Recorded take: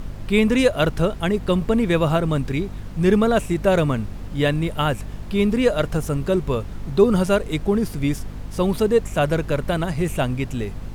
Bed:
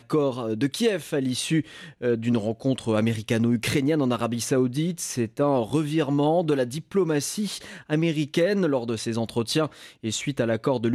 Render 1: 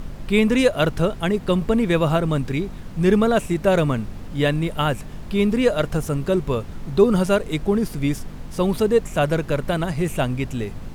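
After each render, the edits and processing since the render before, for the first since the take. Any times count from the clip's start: de-hum 50 Hz, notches 2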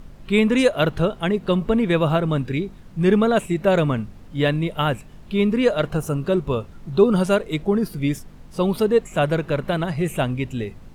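noise print and reduce 9 dB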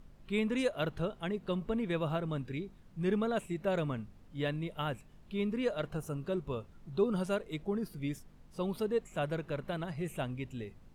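gain -14.5 dB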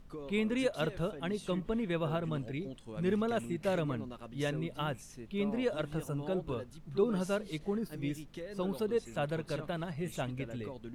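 add bed -22 dB

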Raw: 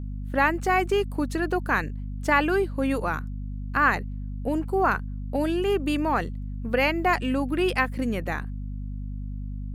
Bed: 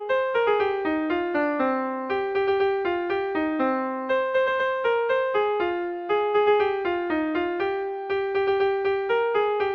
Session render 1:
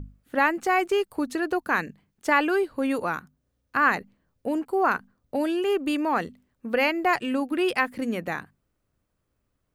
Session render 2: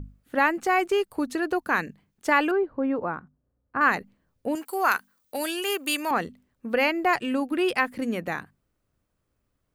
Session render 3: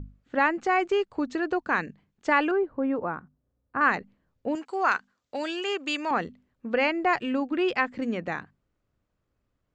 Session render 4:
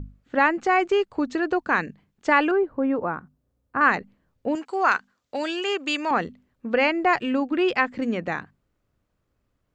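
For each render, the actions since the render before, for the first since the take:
notches 50/100/150/200/250 Hz
2.51–3.81 LPF 1200 Hz; 4.55–6.11 tilt +4.5 dB/oct
elliptic low-pass 7400 Hz, stop band 40 dB; high shelf 5000 Hz -9.5 dB
gain +3.5 dB

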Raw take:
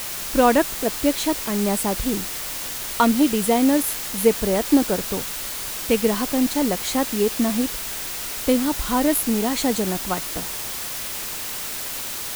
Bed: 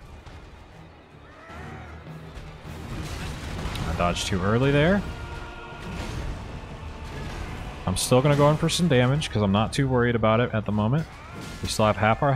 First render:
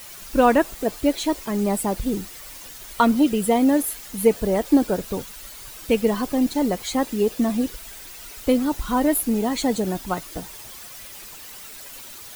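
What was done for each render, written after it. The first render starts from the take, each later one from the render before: denoiser 12 dB, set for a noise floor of -30 dBFS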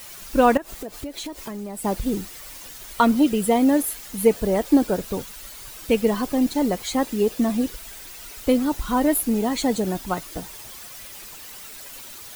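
0.57–1.85 compressor 16:1, threshold -28 dBFS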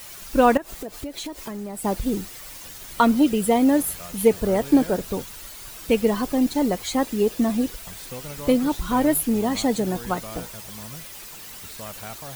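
add bed -18 dB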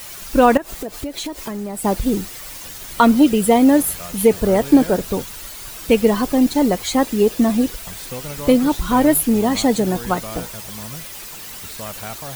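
gain +5.5 dB; limiter -2 dBFS, peak gain reduction 3 dB

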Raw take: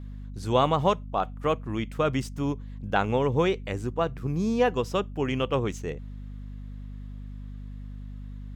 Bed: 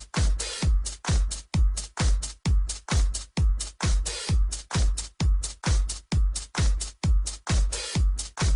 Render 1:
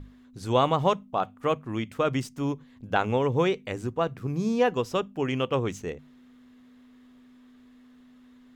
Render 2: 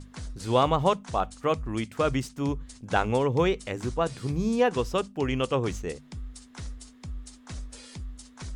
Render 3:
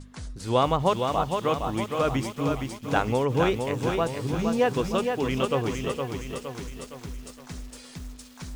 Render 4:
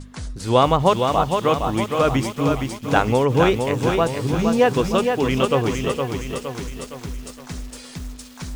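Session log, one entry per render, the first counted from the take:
notches 50/100/150/200 Hz
add bed -15 dB
delay with a stepping band-pass 0.413 s, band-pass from 3000 Hz, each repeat 0.7 oct, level -11 dB; lo-fi delay 0.464 s, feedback 55%, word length 8-bit, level -5 dB
gain +6.5 dB

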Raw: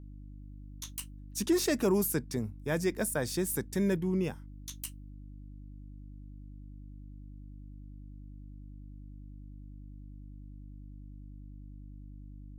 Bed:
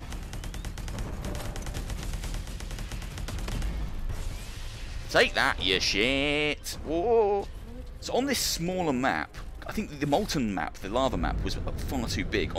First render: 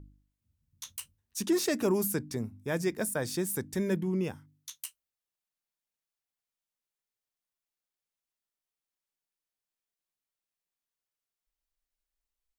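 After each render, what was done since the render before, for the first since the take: de-hum 50 Hz, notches 6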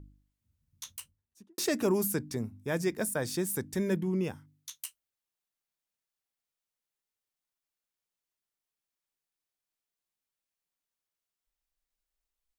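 0.83–1.58 studio fade out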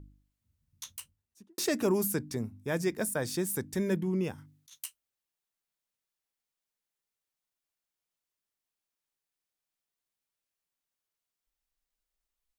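4.38–4.79 negative-ratio compressor -52 dBFS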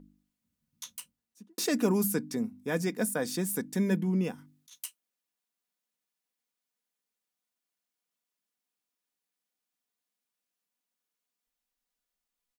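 resonant low shelf 120 Hz -12 dB, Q 1.5; comb 4.1 ms, depth 42%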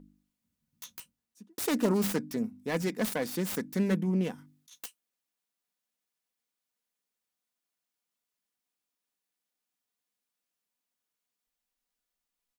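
self-modulated delay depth 0.29 ms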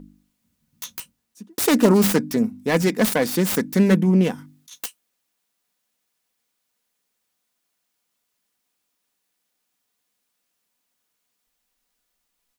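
gain +11.5 dB

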